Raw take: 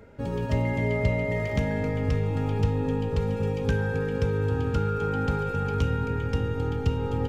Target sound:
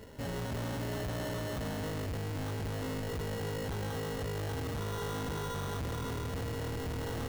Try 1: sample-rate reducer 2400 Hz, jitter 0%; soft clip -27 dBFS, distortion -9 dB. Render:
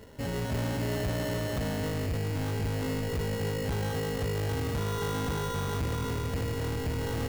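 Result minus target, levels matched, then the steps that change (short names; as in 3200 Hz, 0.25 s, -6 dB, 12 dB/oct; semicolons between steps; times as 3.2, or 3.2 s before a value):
soft clip: distortion -4 dB
change: soft clip -34.5 dBFS, distortion -5 dB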